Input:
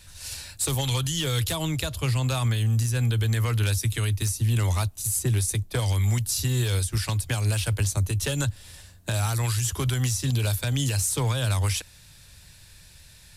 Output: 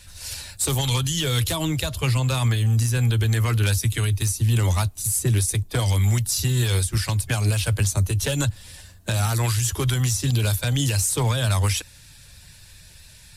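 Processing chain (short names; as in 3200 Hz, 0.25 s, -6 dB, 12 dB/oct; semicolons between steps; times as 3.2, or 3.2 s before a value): bin magnitudes rounded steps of 15 dB; gain +3.5 dB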